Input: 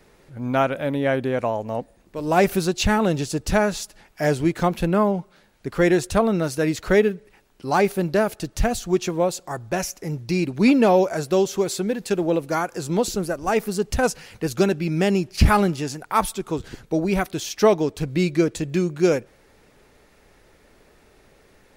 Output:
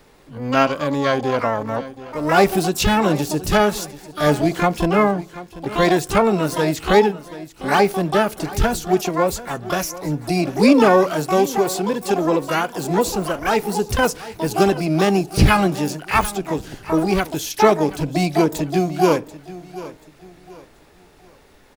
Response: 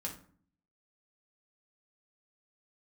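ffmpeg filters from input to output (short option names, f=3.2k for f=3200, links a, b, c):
-filter_complex "[0:a]aecho=1:1:735|1470|2205:0.141|0.048|0.0163,asplit=2[a][b];[b]asetrate=88200,aresample=44100,atempo=0.5,volume=-5dB[c];[a][c]amix=inputs=2:normalize=0,asplit=2[d][e];[1:a]atrim=start_sample=2205,asetrate=70560,aresample=44100[f];[e][f]afir=irnorm=-1:irlink=0,volume=-11dB[g];[d][g]amix=inputs=2:normalize=0,volume=1dB"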